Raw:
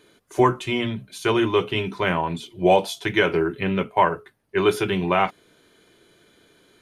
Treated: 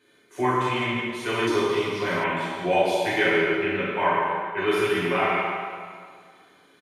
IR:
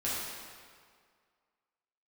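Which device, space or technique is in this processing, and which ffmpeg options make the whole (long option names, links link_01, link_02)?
PA in a hall: -filter_complex "[0:a]highpass=frequency=160:poles=1,equalizer=frequency=2000:width_type=o:width=0.81:gain=6,aecho=1:1:144:0.398[link_01];[1:a]atrim=start_sample=2205[link_02];[link_01][link_02]afir=irnorm=-1:irlink=0,asettb=1/sr,asplit=3[link_03][link_04][link_05];[link_03]atrim=end=1.474[link_06];[link_04]atrim=start=1.47:end=2.24,asetpts=PTS-STARTPTS,afade=type=in:duration=0.004:curve=qsin,afade=type=out:start_time=0.766:duration=0.004:curve=qsin,highshelf=frequency=3700:width_type=q:width=3:gain=9[link_07];[link_05]atrim=start=2.236[link_08];[link_06][link_07]acrossfade=duration=0.004:curve1=hsin:curve2=qsin[link_09];[link_09][link_08]acrossfade=duration=0.004:curve1=qsin:curve2=hsin,volume=-9dB"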